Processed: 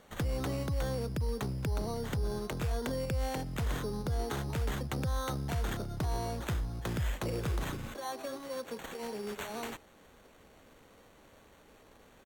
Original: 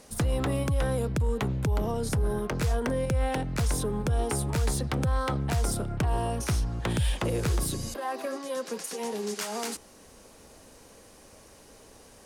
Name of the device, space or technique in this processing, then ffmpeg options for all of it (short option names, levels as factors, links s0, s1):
crushed at another speed: -af "asetrate=55125,aresample=44100,acrusher=samples=7:mix=1:aa=0.000001,asetrate=35280,aresample=44100,volume=0.473"